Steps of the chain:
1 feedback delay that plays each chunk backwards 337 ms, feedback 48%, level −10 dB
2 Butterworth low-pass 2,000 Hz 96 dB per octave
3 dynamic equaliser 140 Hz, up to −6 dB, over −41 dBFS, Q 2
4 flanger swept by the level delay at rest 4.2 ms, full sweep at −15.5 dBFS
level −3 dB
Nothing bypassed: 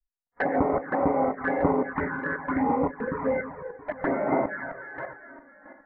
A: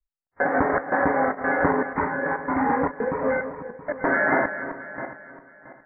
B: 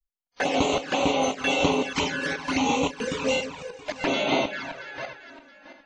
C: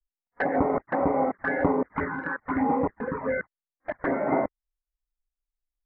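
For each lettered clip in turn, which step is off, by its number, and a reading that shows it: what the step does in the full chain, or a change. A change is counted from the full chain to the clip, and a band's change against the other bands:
4, 2 kHz band +6.5 dB
2, 2 kHz band +3.5 dB
1, change in momentary loudness spread −5 LU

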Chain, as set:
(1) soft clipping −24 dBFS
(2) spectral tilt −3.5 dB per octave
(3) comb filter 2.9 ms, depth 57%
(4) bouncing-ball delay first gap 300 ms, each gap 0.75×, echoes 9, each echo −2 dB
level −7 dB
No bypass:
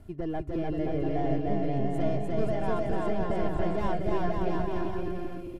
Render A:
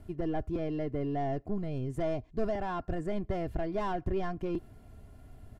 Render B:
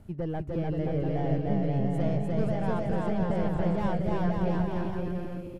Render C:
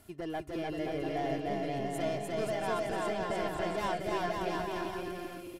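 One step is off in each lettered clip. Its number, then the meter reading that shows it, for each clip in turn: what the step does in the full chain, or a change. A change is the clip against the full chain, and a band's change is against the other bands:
4, change in integrated loudness −4.0 LU
3, 125 Hz band +6.0 dB
2, 4 kHz band +9.5 dB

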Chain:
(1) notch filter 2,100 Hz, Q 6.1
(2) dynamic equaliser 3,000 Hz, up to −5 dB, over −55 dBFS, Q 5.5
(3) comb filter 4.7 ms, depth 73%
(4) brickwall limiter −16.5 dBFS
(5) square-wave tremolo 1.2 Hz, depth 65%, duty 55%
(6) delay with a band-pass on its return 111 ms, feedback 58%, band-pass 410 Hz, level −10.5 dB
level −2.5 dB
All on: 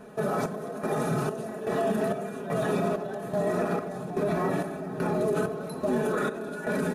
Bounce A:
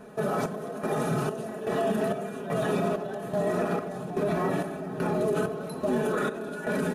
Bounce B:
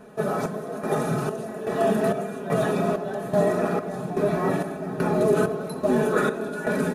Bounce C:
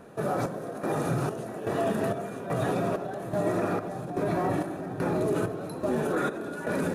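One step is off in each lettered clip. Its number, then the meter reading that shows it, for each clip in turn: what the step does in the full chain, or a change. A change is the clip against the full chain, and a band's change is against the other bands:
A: 2, 4 kHz band +1.5 dB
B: 4, average gain reduction 3.5 dB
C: 3, 125 Hz band +1.5 dB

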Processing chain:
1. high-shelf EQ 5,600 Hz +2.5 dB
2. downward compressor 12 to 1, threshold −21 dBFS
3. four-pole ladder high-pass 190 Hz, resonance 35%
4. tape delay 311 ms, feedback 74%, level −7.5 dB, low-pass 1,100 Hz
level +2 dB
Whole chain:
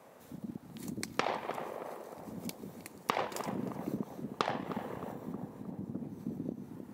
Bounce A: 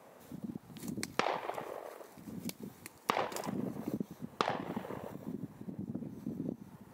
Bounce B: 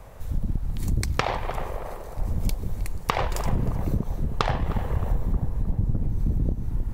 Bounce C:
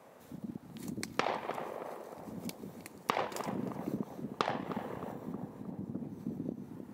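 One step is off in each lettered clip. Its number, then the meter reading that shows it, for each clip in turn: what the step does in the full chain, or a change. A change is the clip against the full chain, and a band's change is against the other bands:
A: 4, echo-to-direct ratio −18.5 dB to none audible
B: 3, 125 Hz band +12.5 dB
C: 1, 8 kHz band −1.5 dB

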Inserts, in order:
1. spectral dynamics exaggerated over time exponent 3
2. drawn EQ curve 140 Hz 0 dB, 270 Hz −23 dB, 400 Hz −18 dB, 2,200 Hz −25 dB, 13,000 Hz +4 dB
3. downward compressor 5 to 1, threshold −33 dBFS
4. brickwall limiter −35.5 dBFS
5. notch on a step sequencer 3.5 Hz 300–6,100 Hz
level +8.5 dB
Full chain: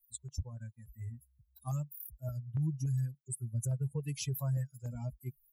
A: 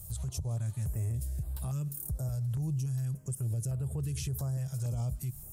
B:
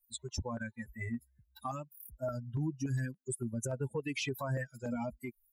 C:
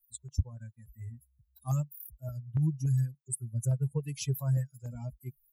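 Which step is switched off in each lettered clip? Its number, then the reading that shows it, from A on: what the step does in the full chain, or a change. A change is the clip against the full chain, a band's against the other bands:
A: 1, 125 Hz band +2.0 dB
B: 2, 125 Hz band −9.5 dB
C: 4, change in crest factor +5.5 dB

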